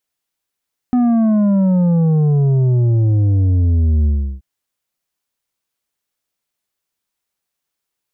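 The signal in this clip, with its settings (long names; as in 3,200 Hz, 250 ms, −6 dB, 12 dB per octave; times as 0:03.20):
bass drop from 250 Hz, over 3.48 s, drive 7 dB, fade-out 0.35 s, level −11.5 dB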